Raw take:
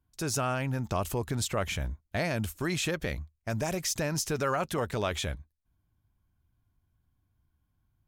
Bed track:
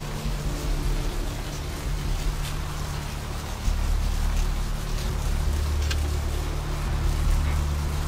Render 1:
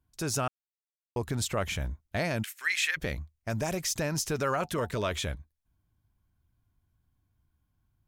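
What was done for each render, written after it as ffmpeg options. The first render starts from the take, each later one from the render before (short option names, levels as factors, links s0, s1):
-filter_complex "[0:a]asplit=3[s0][s1][s2];[s0]afade=t=out:st=2.42:d=0.02[s3];[s1]highpass=f=1900:t=q:w=3.5,afade=t=in:st=2.42:d=0.02,afade=t=out:st=2.96:d=0.02[s4];[s2]afade=t=in:st=2.96:d=0.02[s5];[s3][s4][s5]amix=inputs=3:normalize=0,asettb=1/sr,asplit=3[s6][s7][s8];[s6]atrim=end=4.614[s9];[s7]atrim=start=4.61:end=5.25,asetpts=PTS-STARTPTS,afade=t=in:d=0.004:c=qsin,afade=t=out:st=0.636:d=0.004:c=qsin,asuperstop=centerf=790:order=20:qfactor=5.9[s10];[s8]atrim=start=5.246[s11];[s9][s10]acrossfade=d=0.004:c1=hsin:c2=qsin[s12];[s12][s11]acrossfade=d=0.004:c1=qsin:c2=hsin,asplit=3[s13][s14][s15];[s13]atrim=end=0.48,asetpts=PTS-STARTPTS,afade=t=out:st=0.476:d=0.004:c=hsin[s16];[s14]atrim=start=0.48:end=1.16,asetpts=PTS-STARTPTS,volume=0[s17];[s15]atrim=start=1.16,asetpts=PTS-STARTPTS,afade=t=in:d=0.004:c=hsin[s18];[s16][s17][s18]concat=n=3:v=0:a=1"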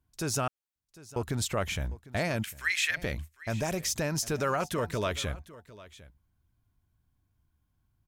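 -af "aecho=1:1:752:0.112"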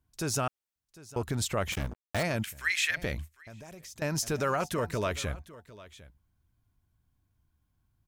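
-filter_complex "[0:a]asettb=1/sr,asplit=3[s0][s1][s2];[s0]atrim=end=1.724[s3];[s1]atrim=start=1.72:end=2.23,asetpts=PTS-STARTPTS,afade=t=in:d=0.004:c=qsin,afade=t=out:st=0.506:d=0.004:c=qsin,acrusher=bits=4:mix=0:aa=0.5[s4];[s2]atrim=start=2.226[s5];[s3][s4]acrossfade=d=0.004:c1=hsin:c2=qsin[s6];[s6][s5]acrossfade=d=0.004:c1=qsin:c2=hsin,asettb=1/sr,asplit=3[s7][s8][s9];[s7]atrim=end=3.294[s10];[s8]atrim=start=3.29:end=4.02,asetpts=PTS-STARTPTS,afade=t=in:d=0.004:c=qsin,afade=t=out:st=0.726:d=0.004:c=qsin,acompressor=threshold=0.00251:ratio=2.5:attack=3.2:release=140:knee=1:detection=peak[s11];[s9]atrim=start=4.016[s12];[s10][s11]acrossfade=d=0.004:c1=hsin:c2=qsin[s13];[s13][s12]acrossfade=d=0.004:c1=qsin:c2=hsin,asettb=1/sr,asplit=3[s14][s15][s16];[s14]atrim=end=4.724[s17];[s15]atrim=start=4.72:end=5.31,asetpts=PTS-STARTPTS,afade=t=in:d=0.004:c=qsin,afade=t=out:st=0.586:d=0.004:c=qsin,equalizer=f=3400:w=7.3:g=-7[s18];[s16]atrim=start=5.306[s19];[s17][s18]acrossfade=d=0.004:c1=hsin:c2=qsin[s20];[s20][s19]acrossfade=d=0.004:c1=qsin:c2=hsin"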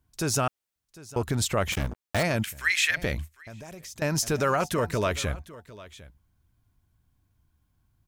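-af "volume=1.68"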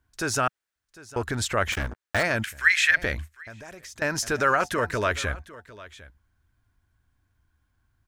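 -af "equalizer=f=160:t=o:w=0.67:g=-8,equalizer=f=1600:t=o:w=0.67:g=9,equalizer=f=16000:t=o:w=0.67:g=-9"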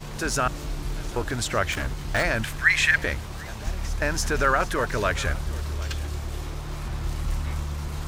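-filter_complex "[1:a]volume=0.596[s0];[0:a][s0]amix=inputs=2:normalize=0"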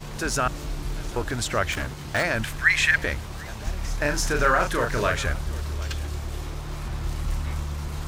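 -filter_complex "[0:a]asettb=1/sr,asplit=3[s0][s1][s2];[s0]atrim=end=1.854[s3];[s1]atrim=start=1.85:end=2.35,asetpts=PTS-STARTPTS,afade=t=in:d=0.004:c=qsin,afade=t=out:st=0.496:d=0.004:c=qsin,highpass=82[s4];[s2]atrim=start=2.346[s5];[s3][s4]acrossfade=d=0.004:c1=hsin:c2=qsin[s6];[s6][s5]acrossfade=d=0.004:c1=qsin:c2=hsin,asettb=1/sr,asplit=3[s7][s8][s9];[s7]atrim=end=3.844[s10];[s8]atrim=start=3.84:end=5.17,asetpts=PTS-STARTPTS,afade=t=in:d=0.004:c=qsin,afade=t=out:st=1.326:d=0.004:c=qsin,asplit=2[s11][s12];[s12]adelay=34,volume=0.562[s13];[s11][s13]amix=inputs=2:normalize=0,atrim=end_sample=58653[s14];[s9]atrim=start=5.166[s15];[s10][s14]acrossfade=d=0.004:c1=hsin:c2=qsin[s16];[s16][s15]acrossfade=d=0.004:c1=qsin:c2=hsin"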